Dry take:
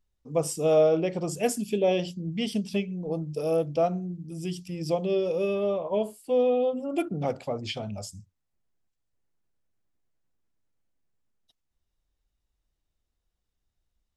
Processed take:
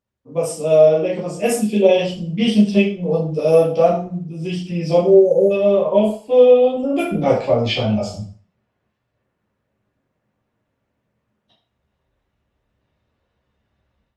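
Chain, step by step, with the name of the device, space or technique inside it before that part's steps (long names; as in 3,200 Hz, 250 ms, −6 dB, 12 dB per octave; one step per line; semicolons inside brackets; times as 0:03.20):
low-pass that shuts in the quiet parts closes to 2,200 Hz, open at −20.5 dBFS
time-frequency box erased 0:05.01–0:05.51, 900–6,000 Hz
far-field microphone of a smart speaker (convolution reverb RT60 0.40 s, pre-delay 6 ms, DRR −7 dB; high-pass filter 98 Hz 12 dB per octave; automatic gain control gain up to 13 dB; level −1 dB; Opus 32 kbit/s 48,000 Hz)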